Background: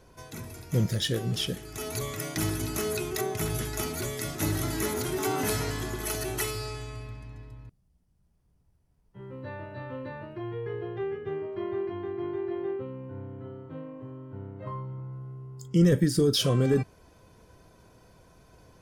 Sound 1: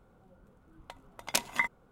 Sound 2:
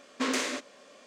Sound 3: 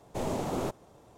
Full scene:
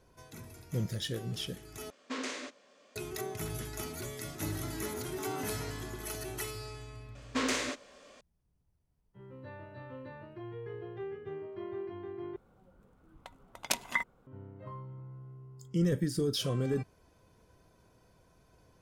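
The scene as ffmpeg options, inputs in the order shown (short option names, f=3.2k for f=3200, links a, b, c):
-filter_complex "[2:a]asplit=2[a][b];[0:a]volume=-8dB[c];[a]lowpass=8.2k[d];[c]asplit=3[e][f][g];[e]atrim=end=1.904[h];[d]atrim=end=1.06,asetpts=PTS-STARTPTS,volume=-8.5dB[i];[f]atrim=start=2.956:end=12.364[j];[1:a]atrim=end=1.91,asetpts=PTS-STARTPTS,volume=-2.5dB[k];[g]atrim=start=14.266[l];[b]atrim=end=1.06,asetpts=PTS-STARTPTS,volume=-2dB,afade=t=in:d=0.004:c=hsin,afade=t=out:st=1.056:d=0.004:c=hsin,adelay=7150[m];[h][i]acrossfade=d=0.004:c1=hsin:c2=hsin[n];[n][j]acrossfade=d=0.004:c1=hsin:c2=hsin[o];[o][k]acrossfade=d=0.004:c1=hsin:c2=hsin[p];[p][l]acrossfade=d=0.004:c1=hsin:c2=hsin[q];[q][m]amix=inputs=2:normalize=0"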